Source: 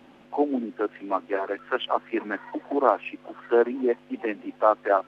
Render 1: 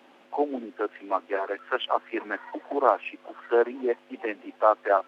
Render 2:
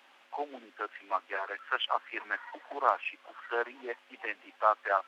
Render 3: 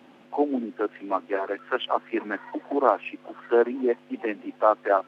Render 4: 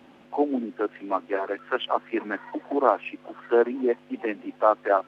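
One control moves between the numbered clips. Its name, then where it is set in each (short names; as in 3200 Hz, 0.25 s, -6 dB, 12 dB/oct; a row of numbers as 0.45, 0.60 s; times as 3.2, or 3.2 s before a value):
HPF, cutoff: 380, 1100, 130, 51 Hz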